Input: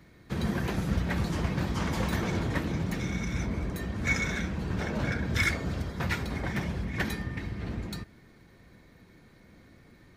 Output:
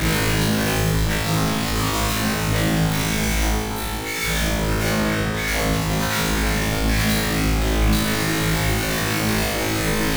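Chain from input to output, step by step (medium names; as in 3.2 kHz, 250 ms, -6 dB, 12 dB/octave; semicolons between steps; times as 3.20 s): one-bit comparator; reverb removal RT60 1.9 s; 3.48–4.21 s: feedback comb 61 Hz, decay 0.2 s, harmonics all, mix 80%; 4.89–5.48 s: treble shelf 4 kHz -9.5 dB; flutter echo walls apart 3.2 m, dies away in 1.4 s; trim +7 dB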